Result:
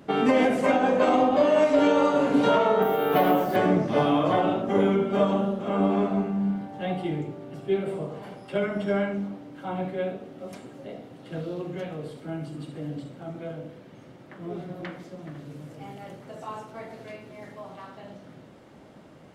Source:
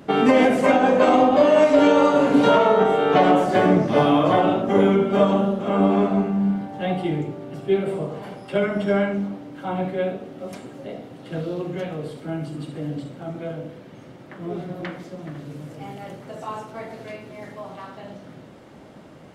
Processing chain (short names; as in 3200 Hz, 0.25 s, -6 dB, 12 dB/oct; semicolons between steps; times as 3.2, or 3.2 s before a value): 2.82–3.56 careless resampling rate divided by 3×, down filtered, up hold; gain -5 dB